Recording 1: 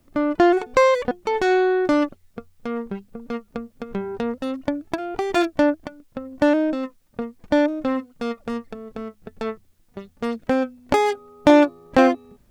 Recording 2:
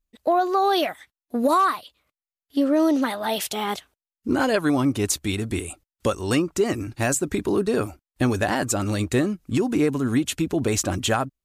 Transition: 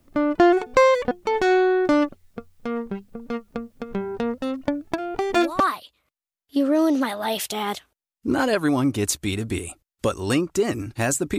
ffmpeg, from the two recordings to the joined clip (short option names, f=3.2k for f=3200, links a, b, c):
-filter_complex "[1:a]asplit=2[a][b];[0:a]apad=whole_dur=11.38,atrim=end=11.38,atrim=end=5.602[c];[b]atrim=start=1.608:end=7.39[d];[a]atrim=start=1.19:end=1.61,asetpts=PTS-STARTPTS,volume=-13.5dB,afade=t=in:d=0.004:c=hsin,afade=t=out:st=0.416:d=0.004:c=hsin,adelay=5180[e];[c][d]acrossfade=d=0.004:c1=hsin:c2=hsin[f];[f][e]amix=inputs=2:normalize=0"